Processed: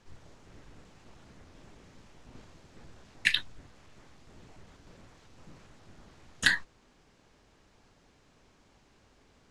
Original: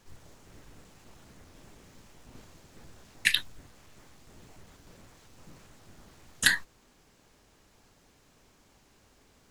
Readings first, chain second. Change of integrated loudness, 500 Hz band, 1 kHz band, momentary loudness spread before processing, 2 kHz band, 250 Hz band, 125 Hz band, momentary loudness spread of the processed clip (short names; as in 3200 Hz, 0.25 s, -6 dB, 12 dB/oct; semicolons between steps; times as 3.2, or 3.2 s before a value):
-1.5 dB, 0.0 dB, -0.5 dB, 6 LU, -0.5 dB, 0.0 dB, 0.0 dB, 6 LU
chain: air absorption 71 m